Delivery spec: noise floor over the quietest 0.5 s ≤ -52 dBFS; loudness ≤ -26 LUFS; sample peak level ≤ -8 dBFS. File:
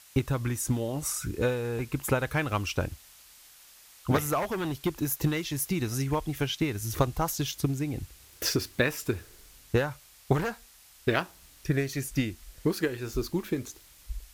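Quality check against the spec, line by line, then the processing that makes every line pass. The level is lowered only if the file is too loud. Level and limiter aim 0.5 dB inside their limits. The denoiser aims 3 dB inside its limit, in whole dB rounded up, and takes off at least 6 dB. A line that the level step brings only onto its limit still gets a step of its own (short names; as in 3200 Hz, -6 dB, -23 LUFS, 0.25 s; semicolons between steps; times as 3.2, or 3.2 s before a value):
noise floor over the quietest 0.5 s -55 dBFS: OK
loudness -30.0 LUFS: OK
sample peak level -8.5 dBFS: OK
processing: none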